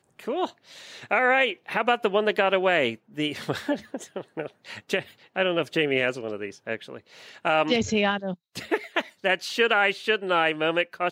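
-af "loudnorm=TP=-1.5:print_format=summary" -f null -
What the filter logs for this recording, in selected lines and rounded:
Input Integrated:    -24.9 LUFS
Input True Peak:      -7.7 dBTP
Input LRA:             4.4 LU
Input Threshold:     -35.4 LUFS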